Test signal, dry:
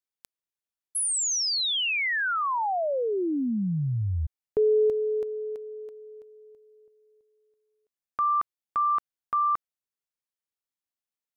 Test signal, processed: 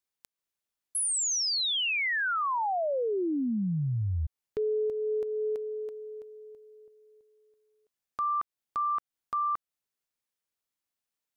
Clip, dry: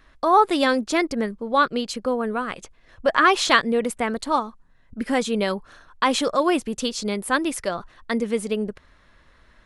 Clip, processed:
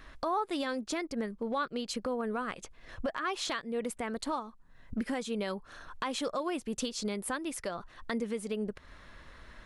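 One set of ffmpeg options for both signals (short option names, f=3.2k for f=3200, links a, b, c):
-af "acompressor=threshold=-30dB:ratio=8:attack=0.13:release=691:knee=1:detection=peak,volume=3.5dB"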